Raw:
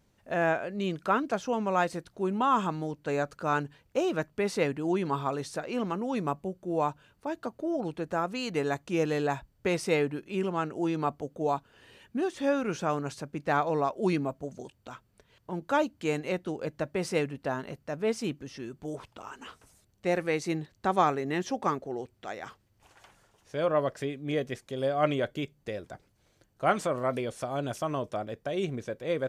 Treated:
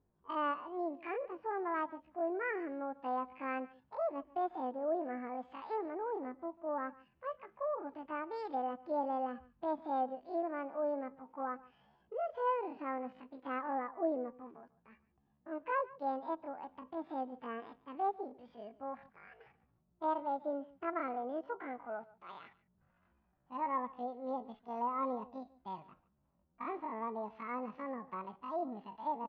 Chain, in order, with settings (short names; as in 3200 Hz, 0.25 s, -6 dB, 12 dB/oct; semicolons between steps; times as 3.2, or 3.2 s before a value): low-pass opened by the level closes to 410 Hz, open at -24.5 dBFS; LPF 1800 Hz 12 dB/oct; treble ducked by the level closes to 510 Hz, closed at -27.5 dBFS; bell 220 Hz -7.5 dB 3 oct; harmonic-percussive split percussive -15 dB; low shelf 100 Hz -4.5 dB; pitch shift +10 st; echo 0.145 s -20.5 dB; gain +2 dB